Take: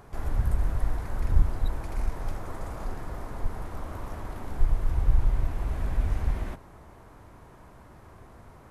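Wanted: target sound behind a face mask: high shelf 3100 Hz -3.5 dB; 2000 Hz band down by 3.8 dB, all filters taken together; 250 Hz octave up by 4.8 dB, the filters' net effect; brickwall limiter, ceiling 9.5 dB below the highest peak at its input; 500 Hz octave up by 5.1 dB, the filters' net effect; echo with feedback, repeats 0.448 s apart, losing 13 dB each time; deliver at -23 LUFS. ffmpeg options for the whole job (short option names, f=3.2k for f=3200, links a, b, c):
-af "equalizer=f=250:t=o:g=5,equalizer=f=500:t=o:g=5.5,equalizer=f=2k:t=o:g=-4.5,alimiter=limit=-18.5dB:level=0:latency=1,highshelf=f=3.1k:g=-3.5,aecho=1:1:448|896|1344:0.224|0.0493|0.0108,volume=10.5dB"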